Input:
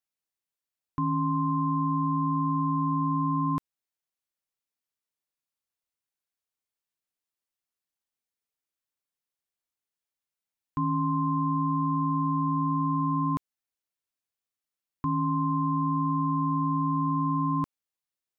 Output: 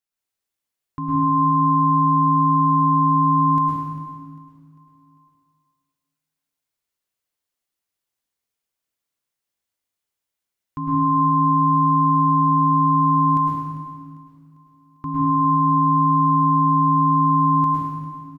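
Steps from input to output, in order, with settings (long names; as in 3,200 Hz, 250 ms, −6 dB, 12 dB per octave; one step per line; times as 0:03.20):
on a send: repeating echo 398 ms, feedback 49%, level −18 dB
on the sum: dense smooth reverb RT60 1.7 s, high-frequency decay 0.9×, pre-delay 95 ms, DRR −5.5 dB
every ending faded ahead of time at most 410 dB per second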